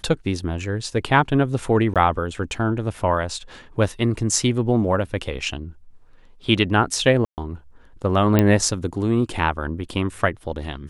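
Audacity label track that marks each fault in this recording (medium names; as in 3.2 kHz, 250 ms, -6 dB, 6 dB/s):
1.940000	1.960000	dropout 17 ms
7.250000	7.380000	dropout 128 ms
8.390000	8.390000	pop -4 dBFS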